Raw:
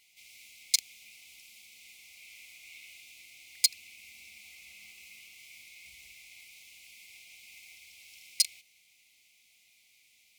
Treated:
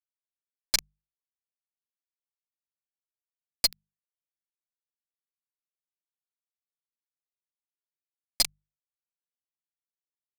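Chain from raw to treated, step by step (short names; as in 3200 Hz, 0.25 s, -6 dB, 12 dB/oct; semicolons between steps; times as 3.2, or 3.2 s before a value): fuzz box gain 30 dB, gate -37 dBFS; notches 50/100/150/200 Hz; gain -3 dB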